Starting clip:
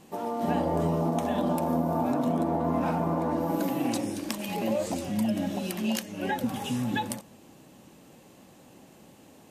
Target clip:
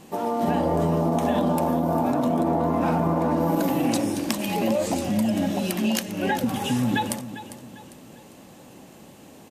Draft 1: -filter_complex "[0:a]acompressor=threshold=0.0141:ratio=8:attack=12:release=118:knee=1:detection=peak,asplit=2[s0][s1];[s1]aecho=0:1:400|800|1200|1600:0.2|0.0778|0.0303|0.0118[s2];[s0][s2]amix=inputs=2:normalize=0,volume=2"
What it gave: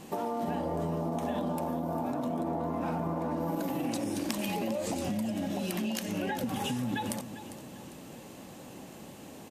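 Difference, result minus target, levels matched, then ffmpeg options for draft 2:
compression: peak gain reduction +10 dB
-filter_complex "[0:a]acompressor=threshold=0.0531:ratio=8:attack=12:release=118:knee=1:detection=peak,asplit=2[s0][s1];[s1]aecho=0:1:400|800|1200|1600:0.2|0.0778|0.0303|0.0118[s2];[s0][s2]amix=inputs=2:normalize=0,volume=2"

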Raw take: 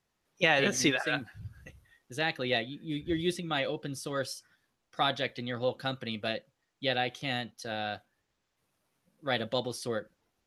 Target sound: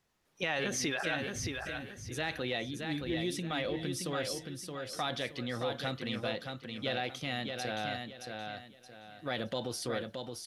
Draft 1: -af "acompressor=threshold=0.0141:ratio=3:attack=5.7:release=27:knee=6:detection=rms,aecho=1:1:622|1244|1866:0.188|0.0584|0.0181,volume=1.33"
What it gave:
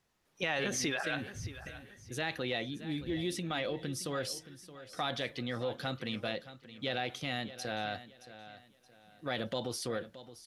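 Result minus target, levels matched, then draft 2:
echo-to-direct -9.5 dB
-af "acompressor=threshold=0.0141:ratio=3:attack=5.7:release=27:knee=6:detection=rms,aecho=1:1:622|1244|1866|2488:0.562|0.174|0.054|0.0168,volume=1.33"

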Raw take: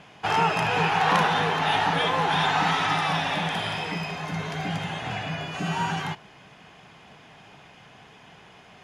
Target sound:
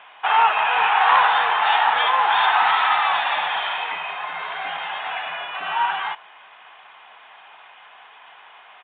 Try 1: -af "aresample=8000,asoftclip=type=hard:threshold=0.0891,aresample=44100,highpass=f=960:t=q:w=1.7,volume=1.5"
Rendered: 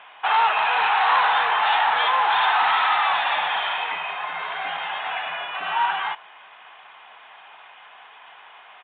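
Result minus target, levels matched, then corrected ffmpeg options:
hard clipper: distortion +17 dB
-af "aresample=8000,asoftclip=type=hard:threshold=0.211,aresample=44100,highpass=f=960:t=q:w=1.7,volume=1.5"

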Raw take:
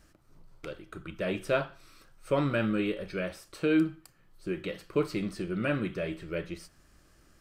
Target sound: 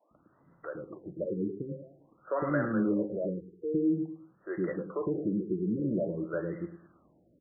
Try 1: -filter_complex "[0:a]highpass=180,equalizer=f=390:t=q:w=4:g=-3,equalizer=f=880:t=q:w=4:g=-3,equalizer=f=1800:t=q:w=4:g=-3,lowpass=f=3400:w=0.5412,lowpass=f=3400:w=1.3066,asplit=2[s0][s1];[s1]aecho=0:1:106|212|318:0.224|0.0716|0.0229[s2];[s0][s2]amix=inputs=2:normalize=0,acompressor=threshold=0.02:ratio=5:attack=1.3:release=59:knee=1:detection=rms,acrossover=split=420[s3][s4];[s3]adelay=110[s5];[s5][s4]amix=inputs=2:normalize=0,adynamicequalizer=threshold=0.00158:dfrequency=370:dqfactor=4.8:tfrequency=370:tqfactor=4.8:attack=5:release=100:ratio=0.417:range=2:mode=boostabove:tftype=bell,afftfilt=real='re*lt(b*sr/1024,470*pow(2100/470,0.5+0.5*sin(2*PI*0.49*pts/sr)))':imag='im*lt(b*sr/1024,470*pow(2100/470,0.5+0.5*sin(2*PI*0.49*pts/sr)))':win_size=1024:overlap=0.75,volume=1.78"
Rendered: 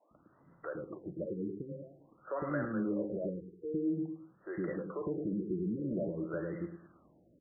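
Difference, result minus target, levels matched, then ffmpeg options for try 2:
compression: peak gain reduction +6 dB
-filter_complex "[0:a]highpass=180,equalizer=f=390:t=q:w=4:g=-3,equalizer=f=880:t=q:w=4:g=-3,equalizer=f=1800:t=q:w=4:g=-3,lowpass=f=3400:w=0.5412,lowpass=f=3400:w=1.3066,asplit=2[s0][s1];[s1]aecho=0:1:106|212|318:0.224|0.0716|0.0229[s2];[s0][s2]amix=inputs=2:normalize=0,acompressor=threshold=0.0473:ratio=5:attack=1.3:release=59:knee=1:detection=rms,acrossover=split=420[s3][s4];[s3]adelay=110[s5];[s5][s4]amix=inputs=2:normalize=0,adynamicequalizer=threshold=0.00158:dfrequency=370:dqfactor=4.8:tfrequency=370:tqfactor=4.8:attack=5:release=100:ratio=0.417:range=2:mode=boostabove:tftype=bell,afftfilt=real='re*lt(b*sr/1024,470*pow(2100/470,0.5+0.5*sin(2*PI*0.49*pts/sr)))':imag='im*lt(b*sr/1024,470*pow(2100/470,0.5+0.5*sin(2*PI*0.49*pts/sr)))':win_size=1024:overlap=0.75,volume=1.78"

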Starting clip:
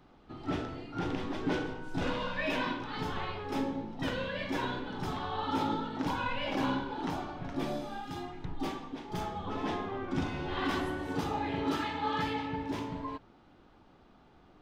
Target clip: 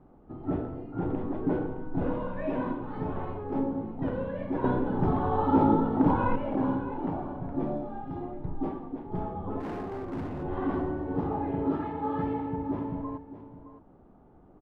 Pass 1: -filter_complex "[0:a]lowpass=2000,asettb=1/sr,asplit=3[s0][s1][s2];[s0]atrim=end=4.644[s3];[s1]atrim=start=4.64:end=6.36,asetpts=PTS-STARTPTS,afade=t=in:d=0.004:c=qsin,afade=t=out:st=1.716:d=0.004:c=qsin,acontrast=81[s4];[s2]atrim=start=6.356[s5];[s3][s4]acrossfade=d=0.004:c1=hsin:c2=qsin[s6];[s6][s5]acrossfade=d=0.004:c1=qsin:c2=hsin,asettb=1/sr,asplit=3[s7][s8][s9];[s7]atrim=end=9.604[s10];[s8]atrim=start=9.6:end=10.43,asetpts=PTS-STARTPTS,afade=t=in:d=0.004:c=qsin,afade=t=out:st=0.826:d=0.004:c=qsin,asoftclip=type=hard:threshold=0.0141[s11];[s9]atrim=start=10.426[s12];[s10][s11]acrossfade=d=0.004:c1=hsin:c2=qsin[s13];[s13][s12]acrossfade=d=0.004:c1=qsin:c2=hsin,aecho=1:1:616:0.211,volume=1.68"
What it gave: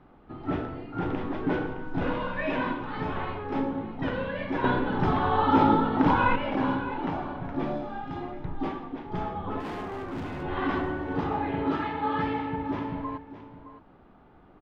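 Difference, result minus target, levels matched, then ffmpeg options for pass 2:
2 kHz band +10.0 dB
-filter_complex "[0:a]lowpass=760,asettb=1/sr,asplit=3[s0][s1][s2];[s0]atrim=end=4.644[s3];[s1]atrim=start=4.64:end=6.36,asetpts=PTS-STARTPTS,afade=t=in:d=0.004:c=qsin,afade=t=out:st=1.716:d=0.004:c=qsin,acontrast=81[s4];[s2]atrim=start=6.356[s5];[s3][s4]acrossfade=d=0.004:c1=hsin:c2=qsin[s6];[s6][s5]acrossfade=d=0.004:c1=qsin:c2=hsin,asettb=1/sr,asplit=3[s7][s8][s9];[s7]atrim=end=9.604[s10];[s8]atrim=start=9.6:end=10.43,asetpts=PTS-STARTPTS,afade=t=in:d=0.004:c=qsin,afade=t=out:st=0.826:d=0.004:c=qsin,asoftclip=type=hard:threshold=0.0141[s11];[s9]atrim=start=10.426[s12];[s10][s11]acrossfade=d=0.004:c1=hsin:c2=qsin[s13];[s13][s12]acrossfade=d=0.004:c1=qsin:c2=hsin,aecho=1:1:616:0.211,volume=1.68"

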